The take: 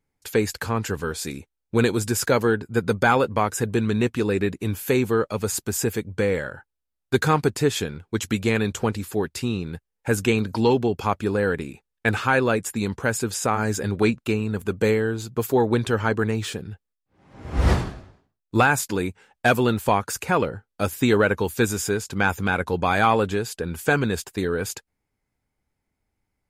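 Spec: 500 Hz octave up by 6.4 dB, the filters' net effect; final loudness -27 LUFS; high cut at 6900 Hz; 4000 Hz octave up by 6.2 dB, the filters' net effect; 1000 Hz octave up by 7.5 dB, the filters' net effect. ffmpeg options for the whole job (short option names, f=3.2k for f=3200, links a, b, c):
-af "lowpass=6.9k,equalizer=f=500:t=o:g=6,equalizer=f=1k:t=o:g=7.5,equalizer=f=4k:t=o:g=7.5,volume=-8.5dB"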